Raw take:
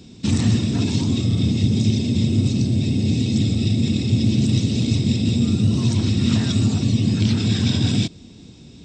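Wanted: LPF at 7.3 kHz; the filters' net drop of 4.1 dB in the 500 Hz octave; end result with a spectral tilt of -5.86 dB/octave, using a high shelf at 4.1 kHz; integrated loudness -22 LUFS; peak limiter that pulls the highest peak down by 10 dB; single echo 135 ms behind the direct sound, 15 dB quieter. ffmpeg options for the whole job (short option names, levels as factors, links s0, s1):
-af "lowpass=7300,equalizer=f=500:t=o:g=-6.5,highshelf=f=4100:g=6,alimiter=limit=0.168:level=0:latency=1,aecho=1:1:135:0.178,volume=1.26"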